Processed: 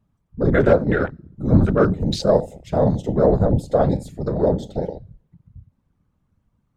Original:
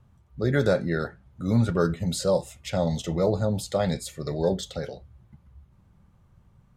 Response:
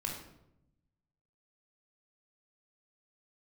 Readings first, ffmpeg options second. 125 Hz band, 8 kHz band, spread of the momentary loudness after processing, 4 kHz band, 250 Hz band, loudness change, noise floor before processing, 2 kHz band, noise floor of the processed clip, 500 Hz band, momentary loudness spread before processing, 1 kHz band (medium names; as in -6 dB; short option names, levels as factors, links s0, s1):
+6.5 dB, no reading, 11 LU, +0.5 dB, +7.0 dB, +7.0 dB, -60 dBFS, +5.5 dB, -70 dBFS, +7.0 dB, 11 LU, +7.5 dB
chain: -filter_complex "[0:a]asplit=2[s0][s1];[1:a]atrim=start_sample=2205[s2];[s1][s2]afir=irnorm=-1:irlink=0,volume=0.158[s3];[s0][s3]amix=inputs=2:normalize=0,afftfilt=real='hypot(re,im)*cos(2*PI*random(0))':imag='hypot(re,im)*sin(2*PI*random(1))':win_size=512:overlap=0.75,acontrast=57,afwtdn=0.02,volume=2"